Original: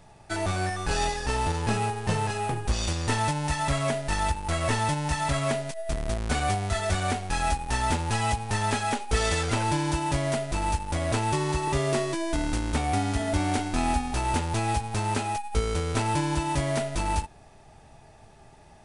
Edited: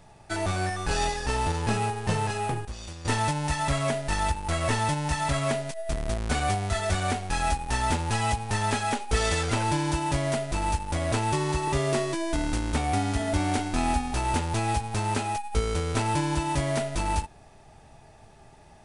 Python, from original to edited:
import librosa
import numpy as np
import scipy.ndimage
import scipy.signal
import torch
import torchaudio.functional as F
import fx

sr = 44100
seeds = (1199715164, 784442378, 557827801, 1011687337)

y = fx.edit(x, sr, fx.clip_gain(start_s=2.65, length_s=0.4, db=-11.5), tone=tone)